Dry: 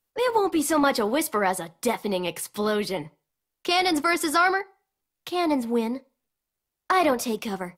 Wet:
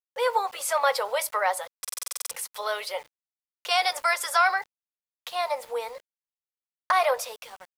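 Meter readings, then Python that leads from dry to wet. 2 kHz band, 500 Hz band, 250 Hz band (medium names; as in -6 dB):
-0.5 dB, -4.0 dB, under -30 dB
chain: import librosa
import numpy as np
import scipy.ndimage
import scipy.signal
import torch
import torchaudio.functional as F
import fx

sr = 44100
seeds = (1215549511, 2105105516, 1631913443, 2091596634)

y = fx.fade_out_tail(x, sr, length_s=0.64)
y = scipy.signal.sosfilt(scipy.signal.ellip(4, 1.0, 40, 500.0, 'highpass', fs=sr, output='sos'), y)
y = np.where(np.abs(y) >= 10.0 ** (-46.5 / 20.0), y, 0.0)
y = fx.buffer_glitch(y, sr, at_s=(1.8, 6.39), block=2048, repeats=10)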